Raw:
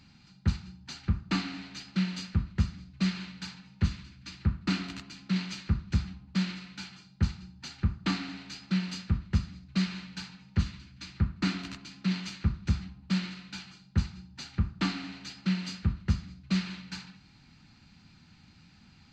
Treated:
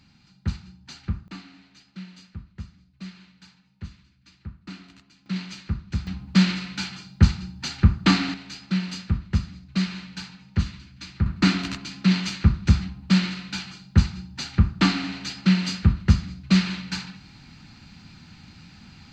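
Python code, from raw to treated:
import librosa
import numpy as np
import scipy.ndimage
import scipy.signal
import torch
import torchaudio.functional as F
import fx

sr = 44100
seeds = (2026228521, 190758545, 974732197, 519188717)

y = fx.gain(x, sr, db=fx.steps((0.0, 0.0), (1.28, -10.5), (5.26, 0.0), (6.07, 11.5), (8.34, 4.0), (11.26, 10.0)))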